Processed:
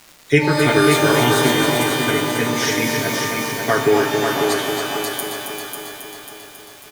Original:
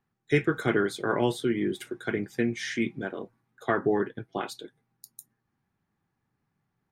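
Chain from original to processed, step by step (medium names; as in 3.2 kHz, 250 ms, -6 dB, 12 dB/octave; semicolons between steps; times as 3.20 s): treble shelf 4.4 kHz +12 dB; comb 7.2 ms, depth 91%; crackle 510 per s -37 dBFS; multi-head delay 272 ms, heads first and second, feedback 56%, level -7 dB; pitch-shifted reverb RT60 1.8 s, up +12 st, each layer -2 dB, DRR 5.5 dB; trim +4 dB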